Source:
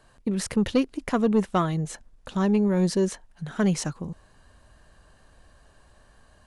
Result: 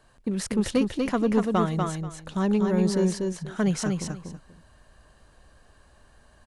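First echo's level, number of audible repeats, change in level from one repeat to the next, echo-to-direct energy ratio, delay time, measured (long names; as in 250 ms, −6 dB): −4.0 dB, 2, −14.5 dB, −4.0 dB, 241 ms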